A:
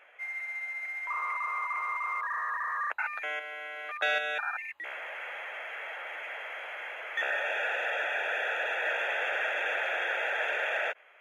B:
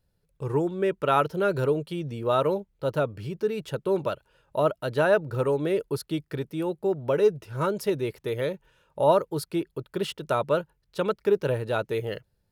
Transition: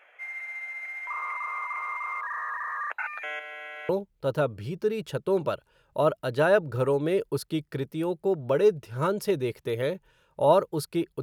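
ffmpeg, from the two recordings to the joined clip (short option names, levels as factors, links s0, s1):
-filter_complex "[0:a]apad=whole_dur=11.22,atrim=end=11.22,atrim=end=3.892[s0];[1:a]atrim=start=2.478:end=9.81[s1];[s0][s1]acrossfade=d=0.004:c1=hsin:c2=hsin"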